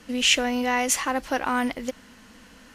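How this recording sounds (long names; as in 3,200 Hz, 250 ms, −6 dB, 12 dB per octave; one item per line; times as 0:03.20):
background noise floor −51 dBFS
spectral slope −0.5 dB per octave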